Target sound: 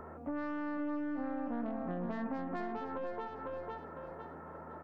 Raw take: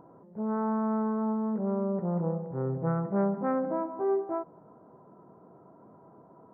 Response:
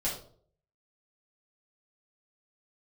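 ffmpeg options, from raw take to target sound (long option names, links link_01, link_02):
-filter_complex "[0:a]equalizer=frequency=83:width_type=o:width=1.7:gain=-9,aeval=exprs='val(0)+0.001*(sin(2*PI*60*n/s)+sin(2*PI*2*60*n/s)/2+sin(2*PI*3*60*n/s)/3+sin(2*PI*4*60*n/s)/4+sin(2*PI*5*60*n/s)/5)':channel_layout=same,aeval=exprs='0.112*(cos(1*acos(clip(val(0)/0.112,-1,1)))-cos(1*PI/2))+0.00708*(cos(5*acos(clip(val(0)/0.112,-1,1)))-cos(5*PI/2))+0.00447*(cos(6*acos(clip(val(0)/0.112,-1,1)))-cos(6*PI/2))':channel_layout=same,acompressor=threshold=-33dB:ratio=6,aecho=1:1:676|1352|2028|2704:0.473|0.132|0.0371|0.0104,asetrate=59535,aresample=44100,acrossover=split=200[link_01][link_02];[link_02]acompressor=threshold=-43dB:ratio=4[link_03];[link_01][link_03]amix=inputs=2:normalize=0,volume=3.5dB"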